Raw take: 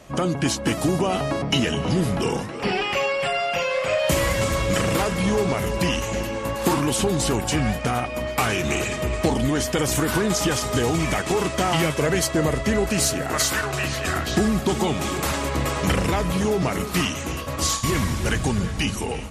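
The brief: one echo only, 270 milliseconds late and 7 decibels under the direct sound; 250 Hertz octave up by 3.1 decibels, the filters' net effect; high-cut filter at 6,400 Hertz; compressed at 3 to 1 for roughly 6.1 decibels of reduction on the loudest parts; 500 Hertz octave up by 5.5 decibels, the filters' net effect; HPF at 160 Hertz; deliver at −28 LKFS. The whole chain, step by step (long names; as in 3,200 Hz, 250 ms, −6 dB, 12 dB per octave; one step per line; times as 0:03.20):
high-pass filter 160 Hz
low-pass filter 6,400 Hz
parametric band 250 Hz +3.5 dB
parametric band 500 Hz +6 dB
downward compressor 3 to 1, threshold −21 dBFS
single-tap delay 270 ms −7 dB
level −4.5 dB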